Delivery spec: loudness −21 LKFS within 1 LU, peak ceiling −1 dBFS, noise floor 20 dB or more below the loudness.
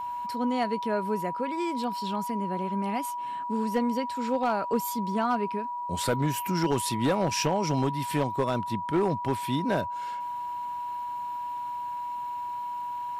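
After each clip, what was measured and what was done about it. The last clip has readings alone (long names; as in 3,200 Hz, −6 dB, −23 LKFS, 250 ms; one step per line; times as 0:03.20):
share of clipped samples 0.5%; peaks flattened at −18.5 dBFS; interfering tone 970 Hz; level of the tone −31 dBFS; integrated loudness −29.5 LKFS; sample peak −18.5 dBFS; target loudness −21.0 LKFS
→ clipped peaks rebuilt −18.5 dBFS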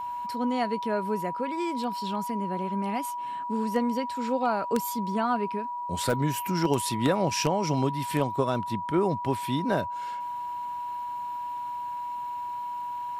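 share of clipped samples 0.0%; interfering tone 970 Hz; level of the tone −31 dBFS
→ notch filter 970 Hz, Q 30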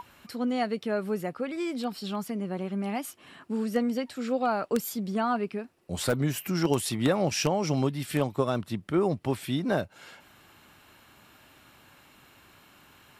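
interfering tone none found; integrated loudness −29.5 LKFS; sample peak −10.0 dBFS; target loudness −21.0 LKFS
→ level +8.5 dB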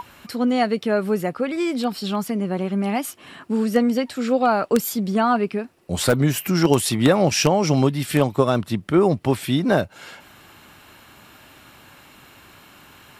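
integrated loudness −21.0 LKFS; sample peak −1.5 dBFS; background noise floor −49 dBFS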